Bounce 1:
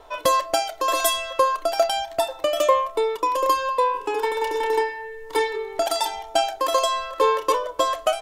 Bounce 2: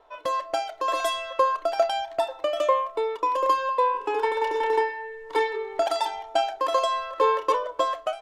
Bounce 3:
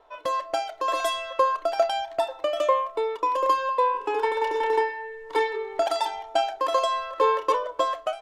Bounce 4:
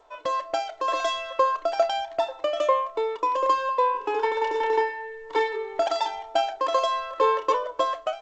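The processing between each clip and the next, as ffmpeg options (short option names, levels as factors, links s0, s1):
-af "lowshelf=f=260:g=-11,dynaudnorm=f=120:g=7:m=3.35,aemphasis=mode=reproduction:type=75fm,volume=0.398"
-af anull
-ar 16000 -c:a g722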